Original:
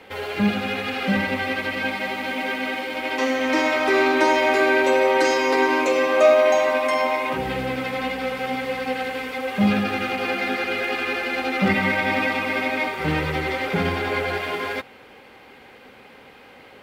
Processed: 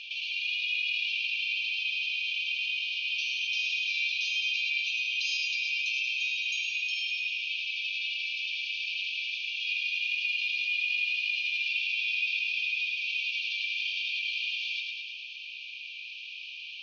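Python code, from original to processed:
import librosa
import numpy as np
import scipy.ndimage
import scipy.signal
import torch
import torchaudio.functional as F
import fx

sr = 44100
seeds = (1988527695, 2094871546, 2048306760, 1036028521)

y = fx.brickwall_bandpass(x, sr, low_hz=2300.0, high_hz=6600.0)
y = fx.air_absorb(y, sr, metres=160.0)
y = fx.echo_feedback(y, sr, ms=107, feedback_pct=55, wet_db=-6.0)
y = fx.env_flatten(y, sr, amount_pct=50)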